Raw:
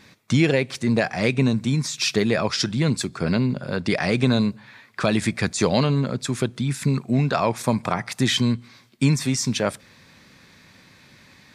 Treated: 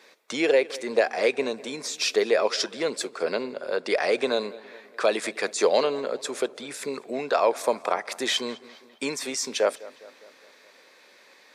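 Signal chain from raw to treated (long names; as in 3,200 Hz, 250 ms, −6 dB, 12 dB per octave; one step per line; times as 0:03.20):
four-pole ladder high-pass 390 Hz, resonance 45%
feedback echo with a low-pass in the loop 204 ms, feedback 56%, low-pass 4,000 Hz, level −19.5 dB
level +6 dB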